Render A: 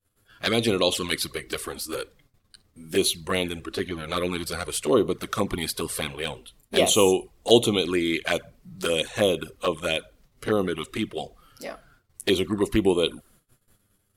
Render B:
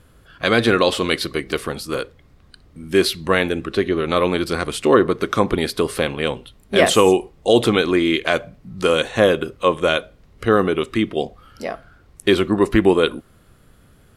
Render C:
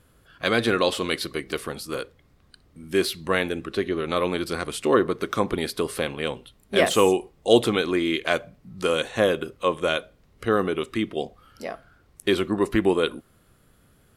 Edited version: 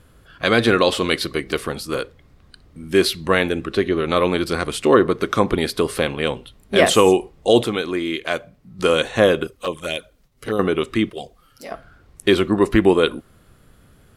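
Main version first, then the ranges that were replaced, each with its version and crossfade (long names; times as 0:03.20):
B
0:07.63–0:08.79: punch in from C
0:09.47–0:10.59: punch in from A
0:11.10–0:11.71: punch in from A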